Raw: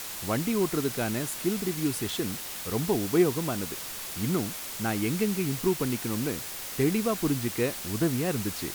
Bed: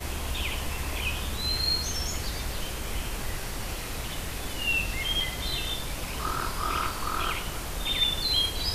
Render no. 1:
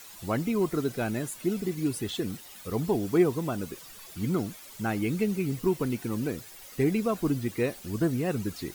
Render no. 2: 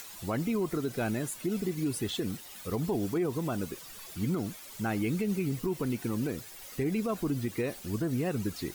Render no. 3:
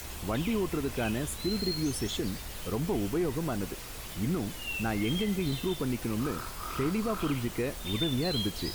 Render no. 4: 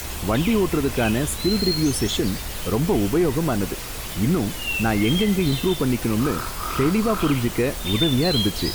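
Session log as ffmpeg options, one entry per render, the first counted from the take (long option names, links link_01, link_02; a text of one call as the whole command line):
ffmpeg -i in.wav -af "afftdn=noise_reduction=13:noise_floor=-38" out.wav
ffmpeg -i in.wav -af "acompressor=mode=upward:threshold=-42dB:ratio=2.5,alimiter=limit=-22dB:level=0:latency=1:release=77" out.wav
ffmpeg -i in.wav -i bed.wav -filter_complex "[1:a]volume=-9.5dB[link_01];[0:a][link_01]amix=inputs=2:normalize=0" out.wav
ffmpeg -i in.wav -af "volume=10dB" out.wav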